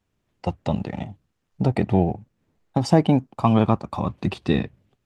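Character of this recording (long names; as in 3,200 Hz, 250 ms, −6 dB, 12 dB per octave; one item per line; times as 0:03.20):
background noise floor −75 dBFS
spectral slope −7.0 dB per octave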